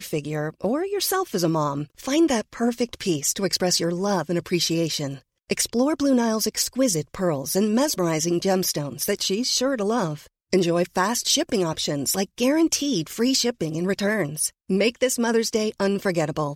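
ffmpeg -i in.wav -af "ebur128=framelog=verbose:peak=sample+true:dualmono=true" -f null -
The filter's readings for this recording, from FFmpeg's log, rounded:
Integrated loudness:
  I:         -20.0 LUFS
  Threshold: -30.0 LUFS
Loudness range:
  LRA:         1.3 LU
  Threshold: -39.9 LUFS
  LRA low:   -20.5 LUFS
  LRA high:  -19.2 LUFS
Sample peak:
  Peak:       -7.1 dBFS
True peak:
  Peak:       -7.1 dBFS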